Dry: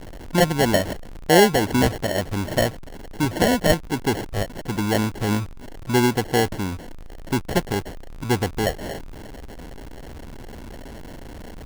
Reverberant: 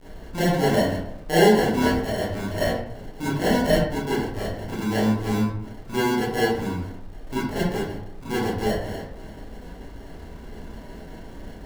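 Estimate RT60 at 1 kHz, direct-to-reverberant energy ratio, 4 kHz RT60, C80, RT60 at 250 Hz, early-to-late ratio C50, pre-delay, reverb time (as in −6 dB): 0.70 s, −10.5 dB, 0.40 s, 5.5 dB, 0.95 s, 0.5 dB, 24 ms, 0.75 s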